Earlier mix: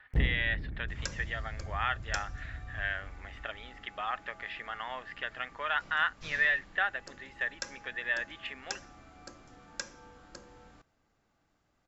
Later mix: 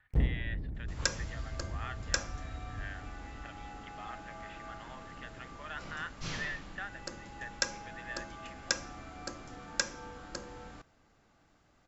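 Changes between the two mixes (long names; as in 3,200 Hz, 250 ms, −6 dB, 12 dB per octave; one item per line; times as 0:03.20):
speech −12.0 dB
second sound +7.5 dB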